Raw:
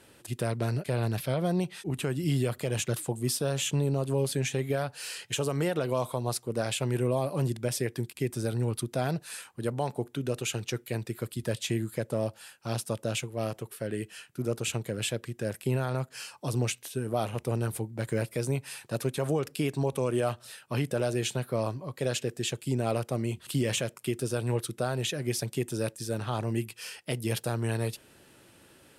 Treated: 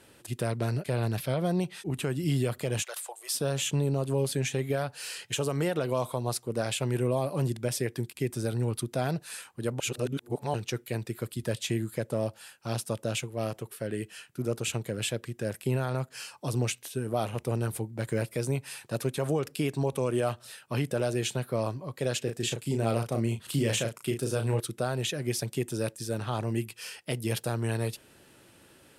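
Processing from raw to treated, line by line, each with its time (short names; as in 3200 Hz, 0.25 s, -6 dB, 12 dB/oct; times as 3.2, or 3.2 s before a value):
2.83–3.35 inverse Chebyshev high-pass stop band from 240 Hz, stop band 50 dB
9.8–10.54 reverse
22.24–24.6 doubler 35 ms -6 dB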